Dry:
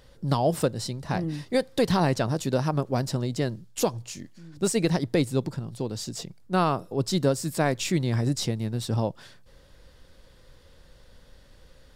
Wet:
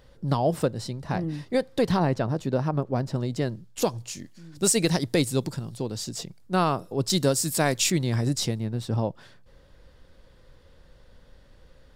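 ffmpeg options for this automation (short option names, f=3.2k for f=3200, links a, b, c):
-af "asetnsamples=n=441:p=0,asendcmd='1.99 equalizer g -13.5;3.15 equalizer g -4;3.82 equalizer g 3;4.55 equalizer g 9;5.72 equalizer g 2;7.1 equalizer g 10;7.9 equalizer g 3;8.59 equalizer g -7.5',equalizer=f=12k:t=o:w=2.7:g=-5.5"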